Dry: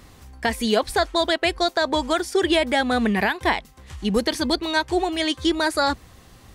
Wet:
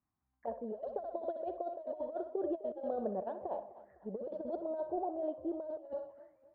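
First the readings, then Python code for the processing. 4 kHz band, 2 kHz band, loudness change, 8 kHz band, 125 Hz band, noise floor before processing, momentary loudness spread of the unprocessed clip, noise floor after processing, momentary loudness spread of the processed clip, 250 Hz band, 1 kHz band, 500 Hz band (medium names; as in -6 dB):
under -40 dB, under -40 dB, -18.0 dB, under -40 dB, under -20 dB, -50 dBFS, 4 LU, -84 dBFS, 7 LU, -19.0 dB, -18.5 dB, -13.5 dB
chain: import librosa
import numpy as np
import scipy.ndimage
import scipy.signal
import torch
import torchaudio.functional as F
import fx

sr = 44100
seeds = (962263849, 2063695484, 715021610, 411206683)

p1 = fx.auto_wah(x, sr, base_hz=580.0, top_hz=3000.0, q=13.0, full_db=-23.5, direction='down')
p2 = 10.0 ** (-31.0 / 20.0) * np.tanh(p1 / 10.0 ** (-31.0 / 20.0))
p3 = p1 + (p2 * librosa.db_to_amplitude(-6.5))
p4 = fx.spacing_loss(p3, sr, db_at_10k=36)
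p5 = p4 + fx.echo_thinned(p4, sr, ms=63, feedback_pct=62, hz=530.0, wet_db=-11, dry=0)
p6 = fx.env_lowpass(p5, sr, base_hz=500.0, full_db=-27.5)
p7 = fx.low_shelf(p6, sr, hz=230.0, db=2.5)
p8 = fx.over_compress(p7, sr, threshold_db=-37.0, ratio=-0.5)
p9 = fx.env_phaser(p8, sr, low_hz=480.0, high_hz=2100.0, full_db=-37.5)
p10 = fx.echo_warbled(p9, sr, ms=252, feedback_pct=40, rate_hz=2.8, cents=84, wet_db=-17)
y = p10 * librosa.db_to_amplitude(1.0)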